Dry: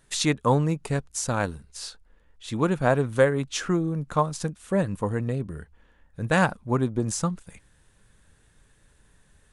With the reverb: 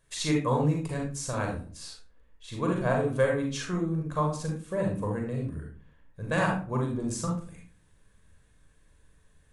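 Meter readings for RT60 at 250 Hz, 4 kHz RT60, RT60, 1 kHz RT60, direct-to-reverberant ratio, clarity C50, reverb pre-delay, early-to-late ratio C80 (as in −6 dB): 0.60 s, 0.25 s, 0.45 s, 0.40 s, 0.0 dB, 3.5 dB, 39 ms, 10.5 dB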